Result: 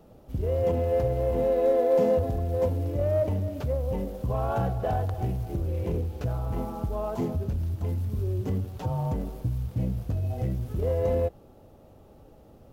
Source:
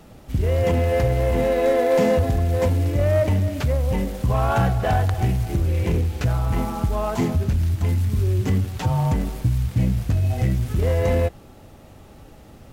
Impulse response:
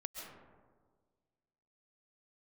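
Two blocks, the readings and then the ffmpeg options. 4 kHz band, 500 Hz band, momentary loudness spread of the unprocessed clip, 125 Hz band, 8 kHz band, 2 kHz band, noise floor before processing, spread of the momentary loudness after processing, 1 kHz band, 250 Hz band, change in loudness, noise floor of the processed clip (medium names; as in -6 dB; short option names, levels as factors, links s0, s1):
under -10 dB, -3.5 dB, 4 LU, -8.5 dB, under -10 dB, -15.5 dB, -46 dBFS, 8 LU, -7.5 dB, -7.5 dB, -6.5 dB, -53 dBFS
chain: -af "equalizer=f=500:t=o:w=1:g=6,equalizer=f=2000:t=o:w=1:g=-8,equalizer=f=4000:t=o:w=1:g=-3,equalizer=f=8000:t=o:w=1:g=-7,volume=0.376"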